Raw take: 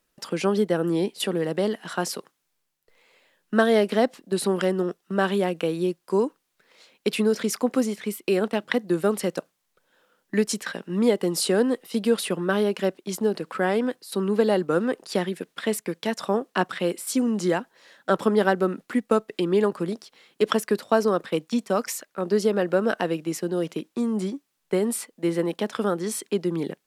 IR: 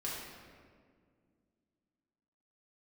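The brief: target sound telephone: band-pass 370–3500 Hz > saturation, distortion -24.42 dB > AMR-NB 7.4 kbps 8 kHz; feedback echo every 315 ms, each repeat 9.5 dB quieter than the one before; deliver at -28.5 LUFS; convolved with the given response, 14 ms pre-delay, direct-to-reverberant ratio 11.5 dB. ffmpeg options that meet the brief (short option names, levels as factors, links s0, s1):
-filter_complex "[0:a]aecho=1:1:315|630|945|1260:0.335|0.111|0.0365|0.012,asplit=2[s0][s1];[1:a]atrim=start_sample=2205,adelay=14[s2];[s1][s2]afir=irnorm=-1:irlink=0,volume=0.2[s3];[s0][s3]amix=inputs=2:normalize=0,highpass=370,lowpass=3500,asoftclip=threshold=0.299" -ar 8000 -c:a libopencore_amrnb -b:a 7400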